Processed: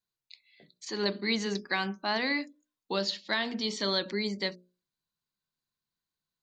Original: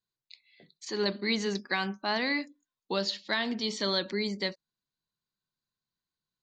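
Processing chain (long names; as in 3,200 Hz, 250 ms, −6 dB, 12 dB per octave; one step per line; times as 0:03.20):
mains-hum notches 60/120/180/240/300/360/420/480/540/600 Hz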